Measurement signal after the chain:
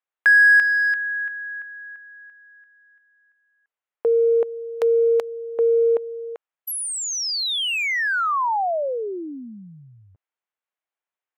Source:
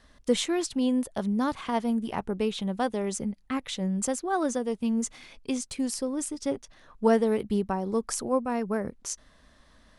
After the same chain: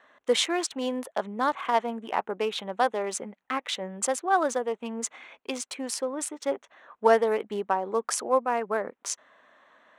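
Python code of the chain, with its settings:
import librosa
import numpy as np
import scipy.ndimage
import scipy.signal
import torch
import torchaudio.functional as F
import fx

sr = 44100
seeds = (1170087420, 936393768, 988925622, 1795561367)

y = fx.wiener(x, sr, points=9)
y = scipy.signal.sosfilt(scipy.signal.butter(2, 600.0, 'highpass', fs=sr, output='sos'), y)
y = fx.high_shelf(y, sr, hz=5500.0, db=-6.5)
y = F.gain(torch.from_numpy(y), 7.5).numpy()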